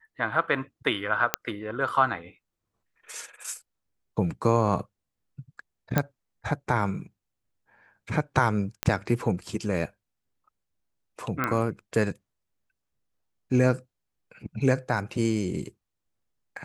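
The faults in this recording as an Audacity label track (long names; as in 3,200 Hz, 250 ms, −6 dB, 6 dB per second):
1.340000	1.340000	click −3 dBFS
5.980000	5.980000	click −8 dBFS
8.830000	8.830000	click −8 dBFS
11.440000	11.440000	click −12 dBFS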